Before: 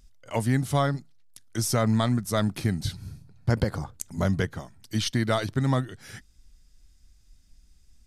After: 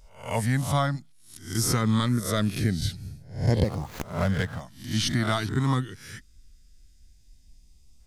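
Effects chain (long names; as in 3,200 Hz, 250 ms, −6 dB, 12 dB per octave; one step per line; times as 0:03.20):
peak hold with a rise ahead of every peak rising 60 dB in 0.44 s
auto-filter notch saw up 0.25 Hz 280–1,700 Hz
0:03.64–0:04.61: windowed peak hold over 5 samples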